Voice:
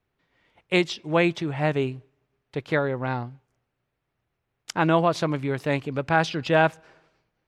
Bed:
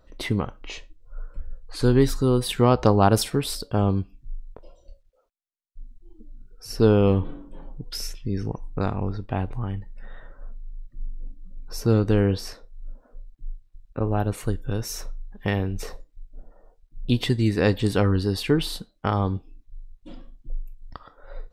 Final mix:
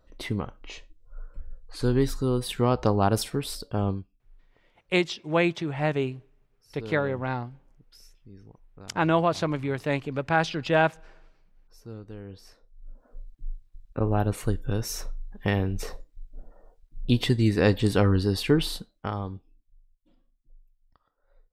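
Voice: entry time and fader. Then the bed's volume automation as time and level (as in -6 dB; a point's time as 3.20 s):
4.20 s, -2.0 dB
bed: 3.90 s -5 dB
4.15 s -21.5 dB
12.24 s -21.5 dB
13.18 s -0.5 dB
18.68 s -0.5 dB
20.17 s -24.5 dB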